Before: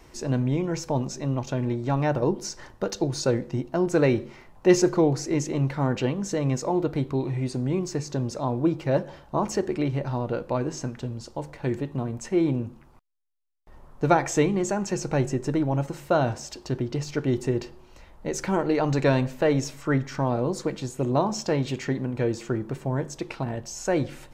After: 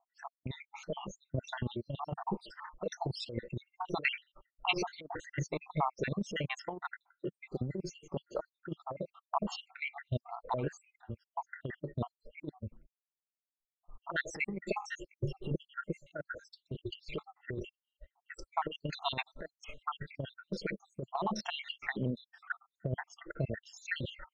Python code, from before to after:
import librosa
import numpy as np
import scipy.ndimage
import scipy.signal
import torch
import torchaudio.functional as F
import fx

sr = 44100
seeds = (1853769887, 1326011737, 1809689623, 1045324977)

y = fx.spec_dropout(x, sr, seeds[0], share_pct=76)
y = fx.noise_reduce_blind(y, sr, reduce_db=16)
y = fx.peak_eq(y, sr, hz=1300.0, db=-8.0, octaves=2.0, at=(14.95, 15.51))
y = fx.over_compress(y, sr, threshold_db=-29.0, ratio=-0.5)
y = fx.dynamic_eq(y, sr, hz=290.0, q=2.3, threshold_db=-47.0, ratio=4.0, max_db=-7)
y = fx.envelope_lowpass(y, sr, base_hz=570.0, top_hz=3200.0, q=2.5, full_db=-34.0, direction='up')
y = y * 10.0 ** (-2.5 / 20.0)